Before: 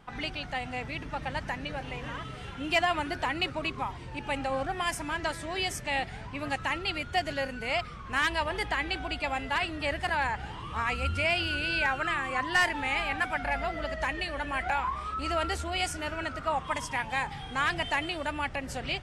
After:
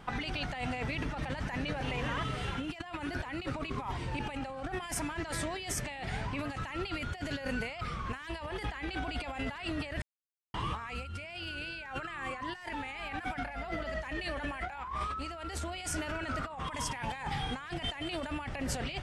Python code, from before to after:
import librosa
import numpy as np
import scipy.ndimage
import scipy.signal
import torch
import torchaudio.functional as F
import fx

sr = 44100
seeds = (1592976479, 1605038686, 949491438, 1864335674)

y = fx.edit(x, sr, fx.silence(start_s=10.02, length_s=0.52), tone=tone)
y = fx.over_compress(y, sr, threshold_db=-38.0, ratio=-1.0)